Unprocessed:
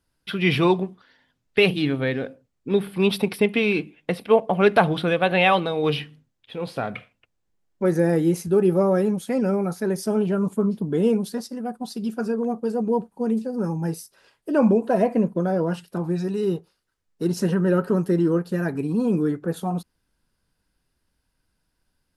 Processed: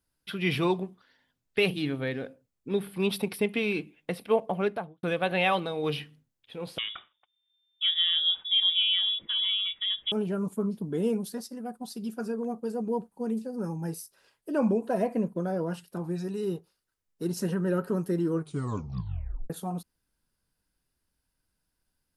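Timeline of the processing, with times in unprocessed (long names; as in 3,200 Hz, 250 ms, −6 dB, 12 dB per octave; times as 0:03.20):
0:04.44–0:05.03: fade out and dull
0:06.78–0:10.12: voice inversion scrambler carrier 3,600 Hz
0:18.32: tape stop 1.18 s
whole clip: high-shelf EQ 8,400 Hz +9.5 dB; level −7.5 dB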